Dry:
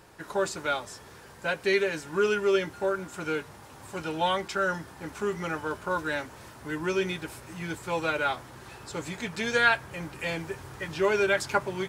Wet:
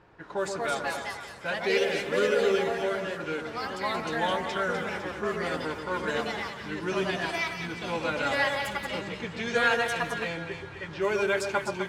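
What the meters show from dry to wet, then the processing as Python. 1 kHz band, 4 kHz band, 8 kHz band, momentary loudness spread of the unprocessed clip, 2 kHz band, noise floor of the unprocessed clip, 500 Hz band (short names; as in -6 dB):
+0.5 dB, +2.0 dB, -1.0 dB, 15 LU, +0.5 dB, -49 dBFS, +0.5 dB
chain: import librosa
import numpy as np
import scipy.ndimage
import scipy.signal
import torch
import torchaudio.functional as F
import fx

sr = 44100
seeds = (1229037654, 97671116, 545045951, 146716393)

y = fx.env_lowpass(x, sr, base_hz=2500.0, full_db=-21.5)
y = fx.echo_split(y, sr, split_hz=1400.0, low_ms=126, high_ms=253, feedback_pct=52, wet_db=-6)
y = fx.echo_pitch(y, sr, ms=294, semitones=3, count=2, db_per_echo=-3.0)
y = F.gain(torch.from_numpy(y), -3.0).numpy()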